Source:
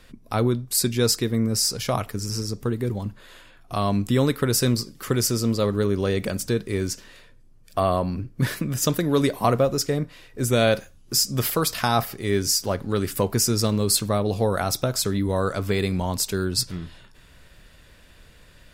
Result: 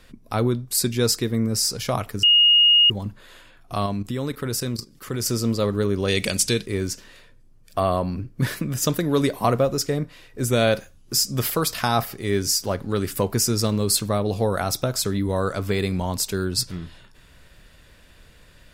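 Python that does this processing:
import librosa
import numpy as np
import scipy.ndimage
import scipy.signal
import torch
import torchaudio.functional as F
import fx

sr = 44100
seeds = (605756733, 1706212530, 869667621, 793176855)

y = fx.level_steps(x, sr, step_db=13, at=(3.86, 5.26))
y = fx.band_shelf(y, sr, hz=4800.0, db=11.5, octaves=2.7, at=(6.08, 6.66))
y = fx.edit(y, sr, fx.bleep(start_s=2.23, length_s=0.67, hz=2860.0, db=-11.5), tone=tone)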